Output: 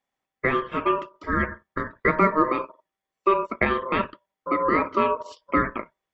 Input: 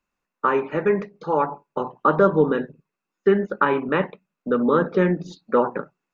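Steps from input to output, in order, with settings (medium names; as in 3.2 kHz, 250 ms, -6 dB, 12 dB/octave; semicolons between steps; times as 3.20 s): ring modulator 780 Hz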